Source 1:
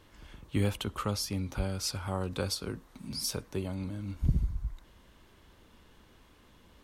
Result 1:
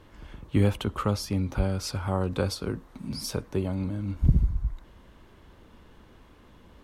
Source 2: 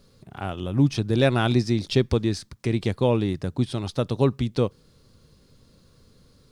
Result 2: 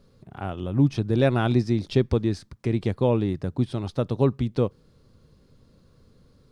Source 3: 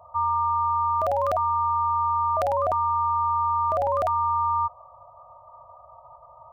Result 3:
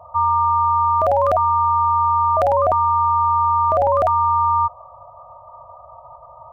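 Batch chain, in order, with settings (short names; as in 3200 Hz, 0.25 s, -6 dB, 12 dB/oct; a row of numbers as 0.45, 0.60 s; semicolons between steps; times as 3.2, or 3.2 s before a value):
high shelf 2400 Hz -9.5 dB; normalise peaks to -9 dBFS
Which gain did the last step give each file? +6.5, 0.0, +8.0 dB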